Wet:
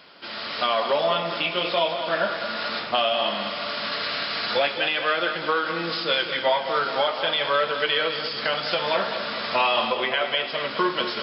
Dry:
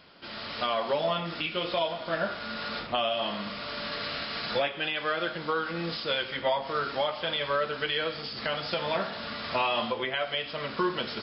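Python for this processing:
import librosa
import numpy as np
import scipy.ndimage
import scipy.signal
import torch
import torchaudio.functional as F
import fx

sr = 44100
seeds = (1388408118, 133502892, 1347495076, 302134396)

y = fx.highpass(x, sr, hz=370.0, slope=6)
y = fx.echo_feedback(y, sr, ms=209, feedback_pct=55, wet_db=-9.5)
y = y * librosa.db_to_amplitude(6.5)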